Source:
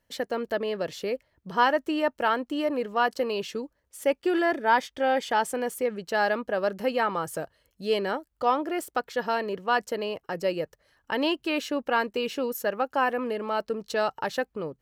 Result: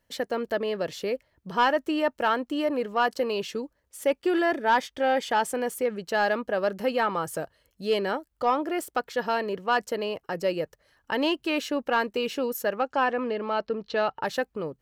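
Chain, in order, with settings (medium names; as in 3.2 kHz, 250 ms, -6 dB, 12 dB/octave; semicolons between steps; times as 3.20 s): 12.75–14.22 s: low-pass 8.3 kHz -> 3.7 kHz 24 dB/octave; saturation -12.5 dBFS, distortion -23 dB; trim +1 dB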